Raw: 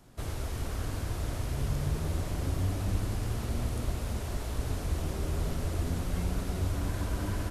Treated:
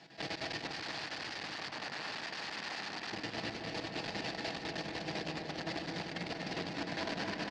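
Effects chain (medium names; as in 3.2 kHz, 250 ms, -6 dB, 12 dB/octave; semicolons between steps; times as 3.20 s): peaking EQ 1.2 kHz -10.5 dB 0.83 oct; hum notches 60/120/180/240/300/360/420/480 Hz; comb 6.1 ms, depth 62%; compressor with a negative ratio -32 dBFS, ratio -0.5; one-sided clip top -34.5 dBFS; square tremolo 9.9 Hz, depth 65%, duty 65%; 0.71–3.12 s: integer overflow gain 41.5 dB; cabinet simulation 290–5000 Hz, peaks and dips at 370 Hz -5 dB, 530 Hz -5 dB, 790 Hz +4 dB, 1.8 kHz +9 dB, 2.6 kHz +4 dB, 4.6 kHz +8 dB; filtered feedback delay 238 ms, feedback 84%, low-pass 2.2 kHz, level -8 dB; transformer saturation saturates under 880 Hz; trim +5.5 dB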